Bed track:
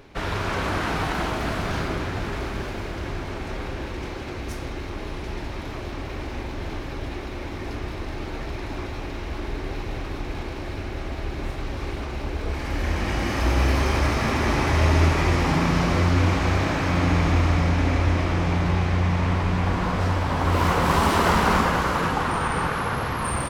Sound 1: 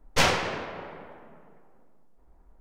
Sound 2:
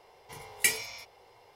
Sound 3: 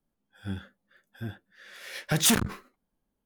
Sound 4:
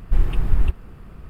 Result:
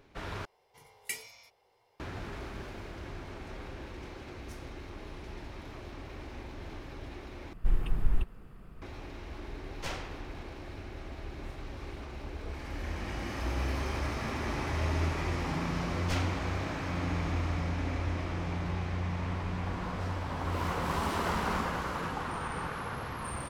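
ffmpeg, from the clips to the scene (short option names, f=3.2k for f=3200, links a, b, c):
-filter_complex "[1:a]asplit=2[a][b];[0:a]volume=-12dB[c];[4:a]equalizer=f=71:w=1.5:g=-6.5[d];[c]asplit=3[e][f][g];[e]atrim=end=0.454[h];[2:a]atrim=end=1.55,asetpts=PTS-STARTPTS,volume=-12dB[i];[f]atrim=start=1.996:end=7.534[j];[d]atrim=end=1.29,asetpts=PTS-STARTPTS,volume=-8dB[k];[g]atrim=start=8.816[l];[a]atrim=end=2.6,asetpts=PTS-STARTPTS,volume=-17.5dB,afade=t=in:d=0.004:c=hsin,afade=t=out:st=2.596:d=0.004:c=hsin,adelay=9660[m];[b]atrim=end=2.6,asetpts=PTS-STARTPTS,volume=-15.5dB,afade=t=in:d=0.004:c=hsin,afade=t=out:st=2.596:d=0.004:c=hsin,adelay=15920[n];[h][i]acrossfade=d=0.004:c1=hsin:c2=hsin[o];[o][j]acrossfade=d=0.004:c1=hsin:c2=hsin[p];[p][k]acrossfade=d=0.004:c1=hsin:c2=hsin[q];[q][l]acrossfade=d=0.004:c1=hsin:c2=hsin[r];[r][m][n]amix=inputs=3:normalize=0"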